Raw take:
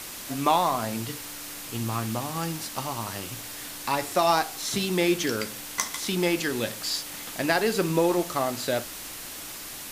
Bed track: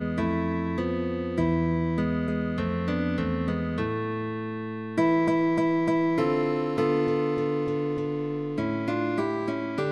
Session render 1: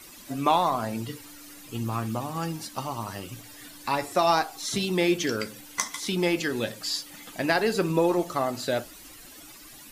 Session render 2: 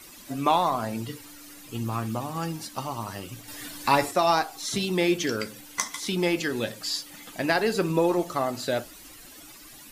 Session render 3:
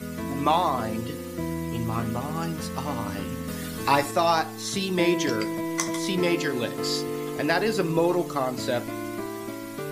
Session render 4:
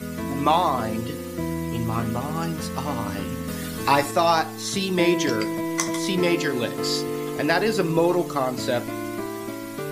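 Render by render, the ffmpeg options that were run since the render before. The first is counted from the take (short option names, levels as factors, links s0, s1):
-af "afftdn=nr=13:nf=-39"
-filter_complex "[0:a]asplit=3[s0][s1][s2];[s0]atrim=end=3.482[s3];[s1]atrim=start=3.478:end=4.112,asetpts=PTS-STARTPTS,volume=2[s4];[s2]atrim=start=4.108[s5];[s3][s4]acrossfade=d=0.004:c1=hsin:c2=hsin[s6];[s6][s5]acrossfade=d=0.004:c1=hsin:c2=hsin"
-filter_complex "[1:a]volume=0.501[s0];[0:a][s0]amix=inputs=2:normalize=0"
-af "volume=1.33,alimiter=limit=0.708:level=0:latency=1"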